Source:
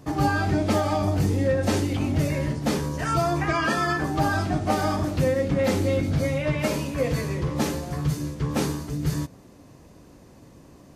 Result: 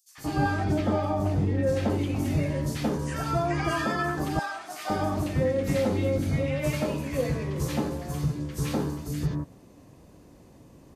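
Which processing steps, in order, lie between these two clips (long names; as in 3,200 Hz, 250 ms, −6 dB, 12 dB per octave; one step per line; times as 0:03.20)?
0:00.64–0:01.90: high-shelf EQ 4,400 Hz −10.5 dB
0:04.21–0:04.72: high-pass filter 960 Hz 12 dB per octave
three-band delay without the direct sound highs, mids, lows 90/180 ms, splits 1,500/5,200 Hz
level −2.5 dB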